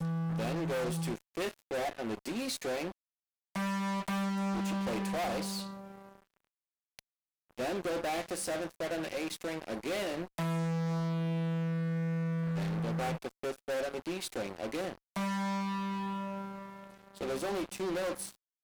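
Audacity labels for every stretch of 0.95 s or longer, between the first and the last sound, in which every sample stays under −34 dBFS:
5.670000	6.990000	silence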